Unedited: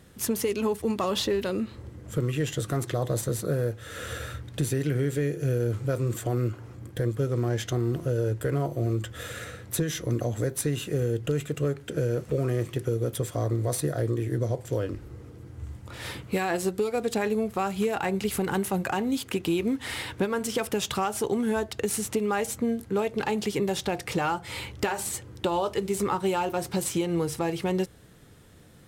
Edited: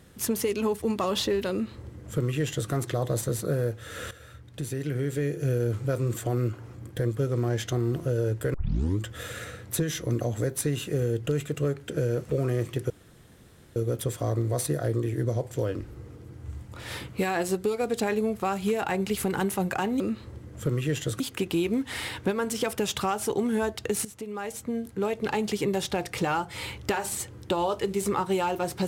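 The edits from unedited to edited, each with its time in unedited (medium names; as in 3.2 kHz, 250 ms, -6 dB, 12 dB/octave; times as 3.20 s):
1.51–2.71 s: copy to 19.14 s
4.11–5.40 s: fade in, from -16.5 dB
8.54 s: tape start 0.46 s
12.90 s: insert room tone 0.86 s
21.99–23.22 s: fade in, from -15 dB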